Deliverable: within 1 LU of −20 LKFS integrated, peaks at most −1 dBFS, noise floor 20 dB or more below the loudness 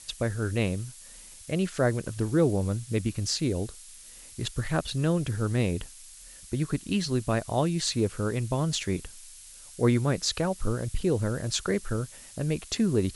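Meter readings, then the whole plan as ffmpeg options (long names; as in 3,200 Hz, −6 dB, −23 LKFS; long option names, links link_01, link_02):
background noise floor −48 dBFS; target noise floor −49 dBFS; integrated loudness −28.5 LKFS; sample peak −11.5 dBFS; target loudness −20.0 LKFS
→ -af "afftdn=noise_reduction=6:noise_floor=-48"
-af "volume=8.5dB"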